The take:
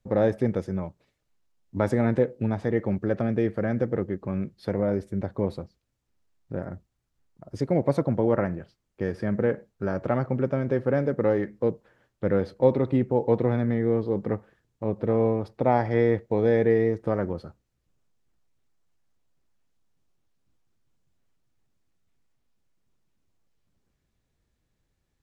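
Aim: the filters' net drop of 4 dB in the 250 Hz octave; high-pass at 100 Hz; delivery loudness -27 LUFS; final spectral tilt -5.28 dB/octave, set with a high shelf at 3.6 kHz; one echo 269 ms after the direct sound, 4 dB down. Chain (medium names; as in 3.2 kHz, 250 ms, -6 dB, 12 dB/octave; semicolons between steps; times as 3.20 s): high-pass 100 Hz; peaking EQ 250 Hz -5 dB; treble shelf 3.6 kHz +4 dB; delay 269 ms -4 dB; trim -0.5 dB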